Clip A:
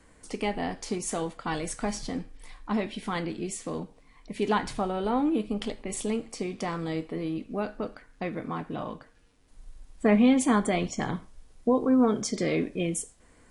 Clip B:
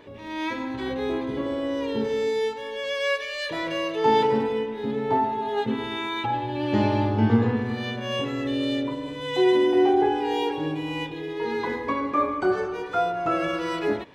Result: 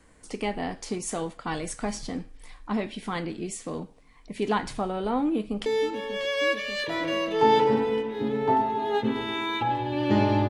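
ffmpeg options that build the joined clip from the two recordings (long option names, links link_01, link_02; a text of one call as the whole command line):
ffmpeg -i cue0.wav -i cue1.wav -filter_complex "[0:a]apad=whole_dur=10.49,atrim=end=10.49,atrim=end=5.662[link_01];[1:a]atrim=start=2.288:end=7.12[link_02];[link_01][link_02]acrossfade=duration=0.004:curve1=hsin:curve2=hsin,asplit=2[link_03][link_04];[link_04]afade=type=in:start_time=5.23:duration=0.01,afade=type=out:start_time=5.66:duration=0.01,aecho=0:1:590|1180|1770|2360|2950|3540|4130|4720|5310|5900|6490|7080:0.266073|0.212858|0.170286|0.136229|0.108983|0.0871866|0.0697493|0.0557994|0.0446396|0.0357116|0.0285693|0.0228555[link_05];[link_03][link_05]amix=inputs=2:normalize=0" out.wav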